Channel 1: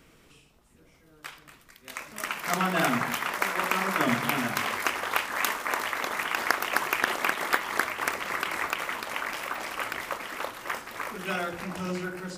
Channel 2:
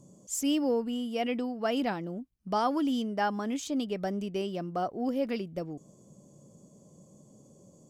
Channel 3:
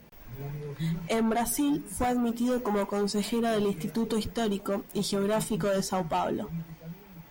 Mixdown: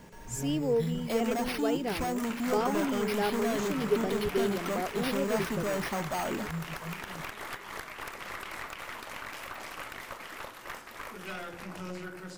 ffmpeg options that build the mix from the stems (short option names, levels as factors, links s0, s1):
-filter_complex "[0:a]acompressor=threshold=0.0398:ratio=6,aeval=exprs='(tanh(25.1*val(0)+0.55)-tanh(0.55))/25.1':c=same,volume=0.668[s0];[1:a]equalizer=f=420:w=5:g=15,volume=0.562[s1];[2:a]alimiter=limit=0.0668:level=0:latency=1:release=362,acrusher=samples=6:mix=1:aa=0.000001,asoftclip=type=tanh:threshold=0.0316,volume=1.19[s2];[s0][s1][s2]amix=inputs=3:normalize=0"